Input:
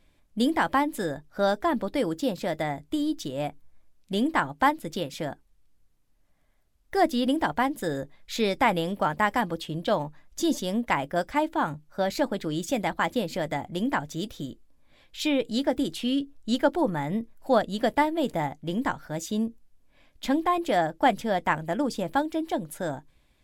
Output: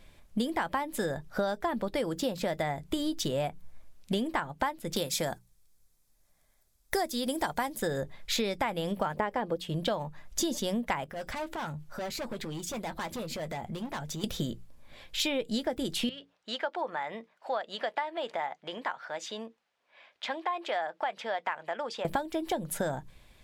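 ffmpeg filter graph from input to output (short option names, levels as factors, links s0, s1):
-filter_complex "[0:a]asettb=1/sr,asplit=3[s0][s1][s2];[s0]atrim=end=4.964[s3];[s1]atrim=start=4.96:end=7.78,asetpts=PTS-STARTPTS,afade=t=in:d=0.004:c=qsin,afade=t=out:st=2.816:d=0.004:c=qsin,bandreject=f=2900:w=11,agate=range=0.355:threshold=0.00251:ratio=16:release=100:detection=peak,bass=f=250:g=-2,treble=f=4000:g=11[s4];[s2]atrim=start=7.776[s5];[s3][s4]acrossfade=d=0.004:c1=hsin:c2=qsin[s6];[s6][s5]acrossfade=d=0.004:c1=qsin:c2=hsin,asettb=1/sr,asplit=3[s7][s8][s9];[s7]atrim=end=9.154[s10];[s8]atrim=start=9.15:end=9.57,asetpts=PTS-STARTPTS,afade=t=in:d=0.004:c=qsin,afade=t=out:st=0.416:d=0.004:c=qsin,acrossover=split=4900[s11][s12];[s12]acompressor=threshold=0.00126:ratio=4:attack=1:release=60[s13];[s11][s13]amix=inputs=2:normalize=0,equalizer=f=450:w=1.1:g=11[s14];[s9]atrim=start=9.566[s15];[s10][s14]acrossfade=d=0.004:c1=hsin:c2=qsin[s16];[s16][s15]acrossfade=d=0.004:c1=qsin:c2=hsin,asettb=1/sr,asplit=3[s17][s18][s19];[s17]atrim=end=11.044[s20];[s18]atrim=start=11.04:end=14.24,asetpts=PTS-STARTPTS,afade=t=in:d=0.004:c=qsin,afade=t=out:st=3.196:d=0.004:c=qsin,volume=21.1,asoftclip=hard,volume=0.0473,acompressor=threshold=0.00891:ratio=16:attack=3.2:release=140:knee=1:detection=peak,asplit=2[s21][s22];[s22]adelay=13,volume=0.251[s23];[s21][s23]amix=inputs=2:normalize=0,atrim=end_sample=141120[s24];[s19]atrim=start=14.236[s25];[s20][s24]acrossfade=d=0.004:c1=hsin:c2=qsin[s26];[s26][s25]acrossfade=d=0.004:c1=qsin:c2=hsin,asettb=1/sr,asplit=3[s27][s28][s29];[s27]atrim=end=16.094[s30];[s28]atrim=start=16.09:end=22.05,asetpts=PTS-STARTPTS,afade=t=in:d=0.004:c=qsin,afade=t=out:st=5.956:d=0.004:c=qsin,highpass=710,lowpass=3500,acompressor=threshold=0.00355:ratio=1.5:attack=3.2:release=140:knee=1:detection=peak[s31];[s29]atrim=start=22.046[s32];[s30][s31]acrossfade=d=0.004:c1=hsin:c2=qsin[s33];[s33][s32]acrossfade=d=0.004:c1=qsin:c2=hsin,equalizer=f=290:t=o:w=0.25:g=-9.5,bandreject=f=60:t=h:w=6,bandreject=f=120:t=h:w=6,bandreject=f=180:t=h:w=6,acompressor=threshold=0.0178:ratio=12,volume=2.51"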